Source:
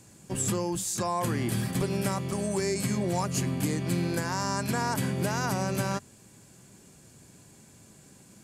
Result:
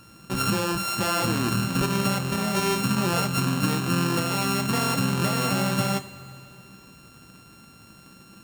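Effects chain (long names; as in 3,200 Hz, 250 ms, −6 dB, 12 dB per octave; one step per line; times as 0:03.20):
samples sorted by size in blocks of 32 samples
coupled-rooms reverb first 0.23 s, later 2.9 s, from −19 dB, DRR 7.5 dB
level +4 dB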